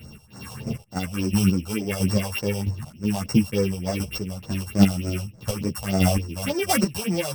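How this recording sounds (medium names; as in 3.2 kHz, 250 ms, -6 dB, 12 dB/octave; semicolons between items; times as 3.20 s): a buzz of ramps at a fixed pitch in blocks of 16 samples; phasing stages 4, 3.4 Hz, lowest notch 280–3100 Hz; chopped level 1.5 Hz, depth 60%, duty 25%; a shimmering, thickened sound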